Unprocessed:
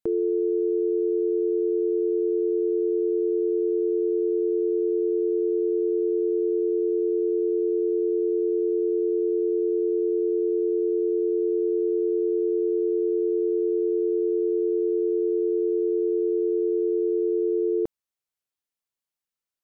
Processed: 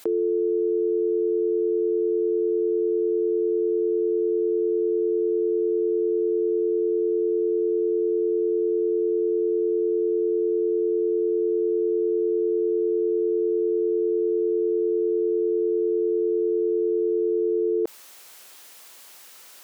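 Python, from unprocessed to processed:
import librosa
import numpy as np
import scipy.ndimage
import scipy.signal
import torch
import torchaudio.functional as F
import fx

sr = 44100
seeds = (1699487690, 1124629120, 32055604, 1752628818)

y = scipy.signal.sosfilt(scipy.signal.butter(2, 360.0, 'highpass', fs=sr, output='sos'), x)
y = fx.env_flatten(y, sr, amount_pct=70)
y = F.gain(torch.from_numpy(y), 3.0).numpy()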